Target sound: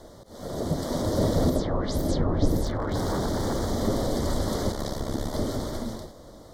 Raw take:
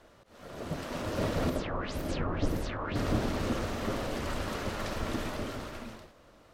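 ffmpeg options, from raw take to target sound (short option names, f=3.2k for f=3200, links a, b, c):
-filter_complex "[0:a]equalizer=f=1.5k:t=o:w=1.1:g=-12,asplit=2[a][b];[b]acompressor=threshold=-41dB:ratio=6,volume=2dB[c];[a][c]amix=inputs=2:normalize=0,asettb=1/sr,asplit=3[d][e][f];[d]atrim=end=4.724[g];[e]atrim=start=4.72:end=5.34,asetpts=PTS-STARTPTS,afade=t=in:d=0.004:c=qsin,afade=t=out:st=0.616:d=0.004:c=qsin,tremolo=f=69:d=0.788[h];[f]atrim=start=5.336[i];[g][h]acrossfade=d=0.004:c1=hsin:c2=qsin[j];[j][i]acrossfade=d=0.004:c1=qsin:c2=hsin,acontrast=52,asettb=1/sr,asplit=3[k][l][m];[k]atrim=end=2.644[n];[l]atrim=start=2.64:end=3.7,asetpts=PTS-STARTPTS,afade=t=in:d=0.004:c=qsin,afade=t=out:st=1.056:d=0.004:c=qsin,aeval=exprs='0.0841*(abs(mod(val(0)/0.0841+3,4)-2)-1)':c=same[o];[m]atrim=start=3.696[p];[n][o]acrossfade=d=0.004:c1=hsin:c2=qsin[q];[q][p]acrossfade=d=0.004:c1=qsin:c2=hsin,asuperstop=centerf=2600:order=4:qfactor=1.8"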